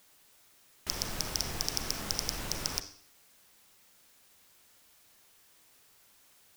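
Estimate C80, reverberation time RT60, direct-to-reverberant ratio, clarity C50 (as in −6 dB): 15.5 dB, 0.55 s, 10.0 dB, 12.0 dB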